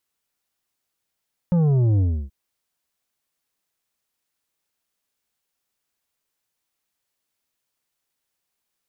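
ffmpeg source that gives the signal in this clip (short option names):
-f lavfi -i "aevalsrc='0.158*clip((0.78-t)/0.31,0,1)*tanh(2.51*sin(2*PI*180*0.78/log(65/180)*(exp(log(65/180)*t/0.78)-1)))/tanh(2.51)':d=0.78:s=44100"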